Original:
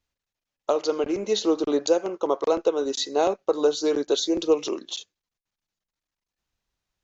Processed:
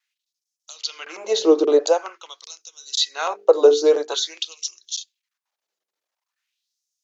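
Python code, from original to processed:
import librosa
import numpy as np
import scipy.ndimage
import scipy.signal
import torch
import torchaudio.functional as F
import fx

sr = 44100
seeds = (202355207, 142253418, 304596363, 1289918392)

y = fx.hum_notches(x, sr, base_hz=50, count=9)
y = fx.vibrato(y, sr, rate_hz=1.8, depth_cents=31.0)
y = fx.filter_lfo_highpass(y, sr, shape='sine', hz=0.47, low_hz=390.0, high_hz=6100.0, q=2.4)
y = F.gain(torch.from_numpy(y), 3.0).numpy()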